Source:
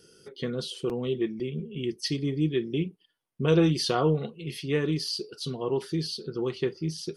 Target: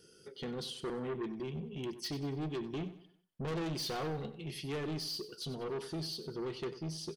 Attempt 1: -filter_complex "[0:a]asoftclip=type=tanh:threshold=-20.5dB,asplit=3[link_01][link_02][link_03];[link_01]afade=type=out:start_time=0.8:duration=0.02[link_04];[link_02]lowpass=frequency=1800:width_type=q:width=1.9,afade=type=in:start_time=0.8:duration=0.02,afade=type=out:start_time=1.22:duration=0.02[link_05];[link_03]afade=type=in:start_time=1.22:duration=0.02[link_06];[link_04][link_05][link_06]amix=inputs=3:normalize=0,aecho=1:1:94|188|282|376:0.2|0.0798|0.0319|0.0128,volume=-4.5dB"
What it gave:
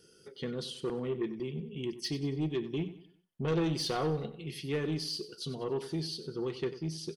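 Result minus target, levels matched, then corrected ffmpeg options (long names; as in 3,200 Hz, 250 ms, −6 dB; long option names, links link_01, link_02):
soft clipping: distortion −7 dB
-filter_complex "[0:a]asoftclip=type=tanh:threshold=-30dB,asplit=3[link_01][link_02][link_03];[link_01]afade=type=out:start_time=0.8:duration=0.02[link_04];[link_02]lowpass=frequency=1800:width_type=q:width=1.9,afade=type=in:start_time=0.8:duration=0.02,afade=type=out:start_time=1.22:duration=0.02[link_05];[link_03]afade=type=in:start_time=1.22:duration=0.02[link_06];[link_04][link_05][link_06]amix=inputs=3:normalize=0,aecho=1:1:94|188|282|376:0.2|0.0798|0.0319|0.0128,volume=-4.5dB"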